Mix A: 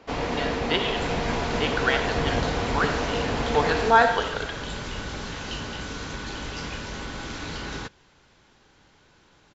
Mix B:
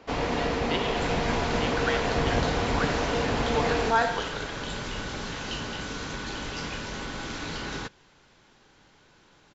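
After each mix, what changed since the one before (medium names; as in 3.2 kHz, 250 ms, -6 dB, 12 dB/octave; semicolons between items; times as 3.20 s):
speech -6.5 dB; second sound: add peaking EQ 67 Hz -6.5 dB 0.79 oct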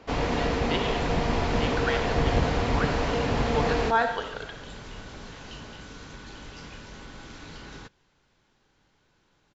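second sound -10.0 dB; master: add bass shelf 140 Hz +5.5 dB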